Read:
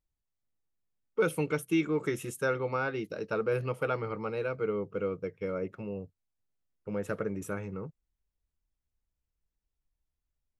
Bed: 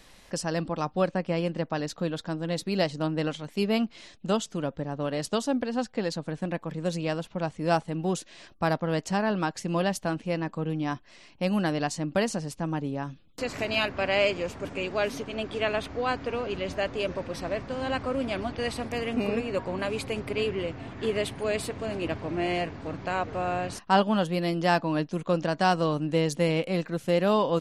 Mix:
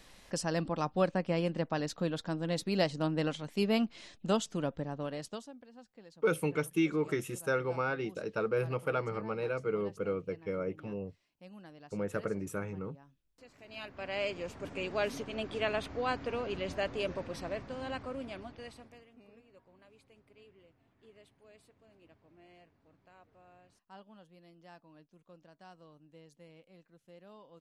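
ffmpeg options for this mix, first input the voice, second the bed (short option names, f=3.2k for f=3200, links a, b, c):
-filter_complex "[0:a]adelay=5050,volume=-1.5dB[a];[1:a]volume=17dB,afade=t=out:st=4.71:d=0.82:silence=0.0794328,afade=t=in:st=13.62:d=1.32:silence=0.0944061,afade=t=out:st=17.05:d=2.03:silence=0.0473151[b];[a][b]amix=inputs=2:normalize=0"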